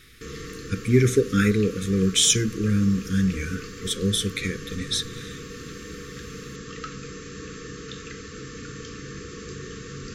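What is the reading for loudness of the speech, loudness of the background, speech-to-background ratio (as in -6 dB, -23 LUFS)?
-23.0 LUFS, -38.0 LUFS, 15.0 dB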